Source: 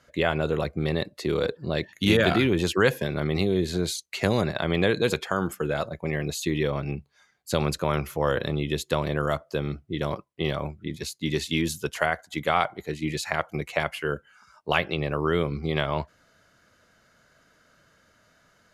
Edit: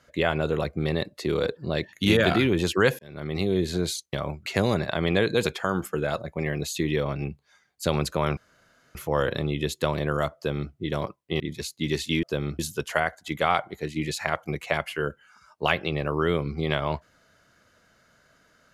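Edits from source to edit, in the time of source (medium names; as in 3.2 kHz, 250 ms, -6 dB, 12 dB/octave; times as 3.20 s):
2.99–3.53 s: fade in
8.04 s: insert room tone 0.58 s
9.45–9.81 s: copy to 11.65 s
10.49–10.82 s: move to 4.13 s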